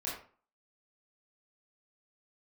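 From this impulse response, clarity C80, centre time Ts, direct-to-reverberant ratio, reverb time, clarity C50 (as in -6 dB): 8.0 dB, 42 ms, -7.0 dB, 0.45 s, 3.5 dB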